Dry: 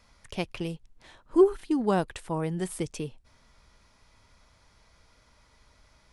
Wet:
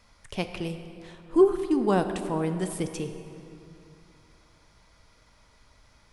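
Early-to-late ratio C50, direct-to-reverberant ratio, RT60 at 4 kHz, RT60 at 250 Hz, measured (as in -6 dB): 9.0 dB, 7.5 dB, 1.9 s, 3.0 s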